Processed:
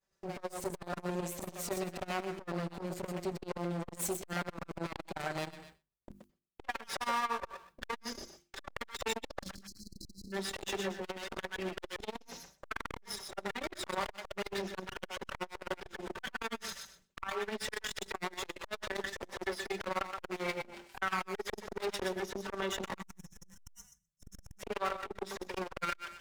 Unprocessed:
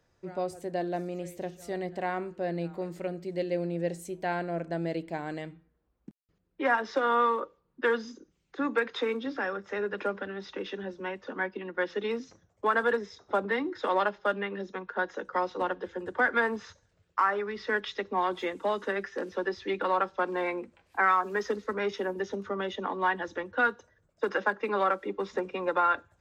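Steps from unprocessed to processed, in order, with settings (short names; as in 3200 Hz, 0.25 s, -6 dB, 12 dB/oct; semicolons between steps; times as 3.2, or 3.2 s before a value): minimum comb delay 5.2 ms; compressor 10:1, threshold -36 dBFS, peak gain reduction 16.5 dB; spectral delete 9.42–10.33, 350–4000 Hz; high shelf 4200 Hz +9 dB; spectral gain 22.95–24.6, 200–5200 Hz -24 dB; on a send: thinning echo 0.124 s, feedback 25%, high-pass 800 Hz, level -5 dB; on the sum: expander -59 dBFS; notches 50/100/150/200/250/300/350 Hz; core saturation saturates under 1700 Hz; gain +7 dB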